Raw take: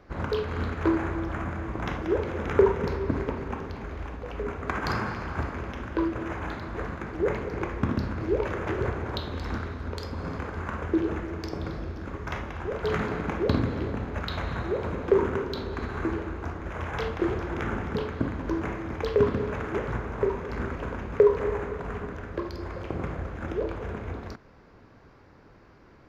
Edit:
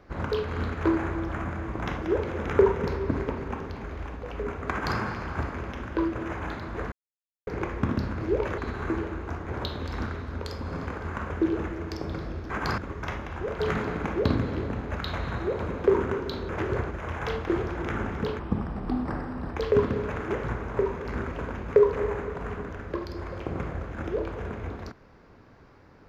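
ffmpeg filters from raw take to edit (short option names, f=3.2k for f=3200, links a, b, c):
-filter_complex "[0:a]asplit=11[a][b][c][d][e][f][g][h][i][j][k];[a]atrim=end=6.92,asetpts=PTS-STARTPTS,afade=t=out:st=6.916:d=0.004:c=hsin[l];[b]atrim=start=6.92:end=7.47,asetpts=PTS-STARTPTS,volume=0[m];[c]atrim=start=7.47:end=8.582,asetpts=PTS-STARTPTS,afade=t=in:d=0.004:c=hsin[n];[d]atrim=start=15.728:end=16.632[o];[e]atrim=start=8.998:end=12.022[p];[f]atrim=start=4.708:end=4.992[q];[g]atrim=start=12.018:end=15.732[r];[h]atrim=start=8.578:end=9.002[s];[i]atrim=start=16.628:end=18.114[t];[j]atrim=start=18.11:end=19,asetpts=PTS-STARTPTS,asetrate=33516,aresample=44100,atrim=end_sample=51643,asetpts=PTS-STARTPTS[u];[k]atrim=start=18.996[v];[l][m][n]concat=n=3:v=0:a=1[w];[w][o]acrossfade=d=0.004:c1=hsin:c2=hsin[x];[x][p]acrossfade=d=0.004:c1=hsin:c2=hsin[y];[y][q]acrossfade=d=0.004:c1=hsin:c2=hsin[z];[z][r]acrossfade=d=0.004:c1=hsin:c2=hsin[aa];[aa][s]acrossfade=d=0.004:c1=hsin:c2=hsin[ab];[ab][t]acrossfade=d=0.004:c1=hsin:c2=hsin[ac];[ac][u]acrossfade=d=0.004:c1=hsin:c2=hsin[ad];[ad][v]acrossfade=d=0.004:c1=hsin:c2=hsin"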